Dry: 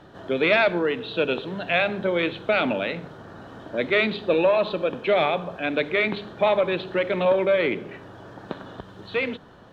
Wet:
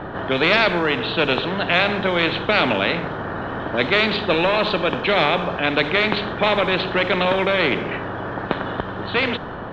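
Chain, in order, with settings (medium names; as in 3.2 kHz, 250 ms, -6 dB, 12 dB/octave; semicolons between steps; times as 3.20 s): level-controlled noise filter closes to 2.3 kHz, open at -16 dBFS; treble shelf 4.2 kHz -12 dB; spectrum-flattening compressor 2:1; trim +7 dB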